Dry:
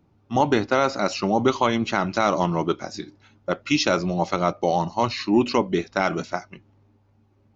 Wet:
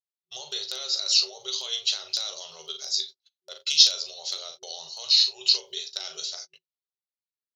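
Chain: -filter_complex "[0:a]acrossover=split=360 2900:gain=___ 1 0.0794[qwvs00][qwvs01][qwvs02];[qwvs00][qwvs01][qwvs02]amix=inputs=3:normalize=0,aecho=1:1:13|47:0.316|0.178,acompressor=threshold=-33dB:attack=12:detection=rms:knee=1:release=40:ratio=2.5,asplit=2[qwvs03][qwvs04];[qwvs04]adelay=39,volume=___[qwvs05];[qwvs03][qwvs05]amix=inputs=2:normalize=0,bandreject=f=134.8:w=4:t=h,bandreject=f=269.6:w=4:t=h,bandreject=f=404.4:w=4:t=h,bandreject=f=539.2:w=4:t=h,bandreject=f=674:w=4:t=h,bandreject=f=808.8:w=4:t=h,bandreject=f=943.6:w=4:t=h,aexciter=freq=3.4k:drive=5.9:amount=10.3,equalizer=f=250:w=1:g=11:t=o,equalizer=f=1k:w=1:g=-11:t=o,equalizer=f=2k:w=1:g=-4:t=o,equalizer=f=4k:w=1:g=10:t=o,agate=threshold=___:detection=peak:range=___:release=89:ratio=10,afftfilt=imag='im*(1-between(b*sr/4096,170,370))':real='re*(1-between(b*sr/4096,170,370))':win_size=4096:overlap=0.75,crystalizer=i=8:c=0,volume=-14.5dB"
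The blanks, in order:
0.1, -10dB, -43dB, -33dB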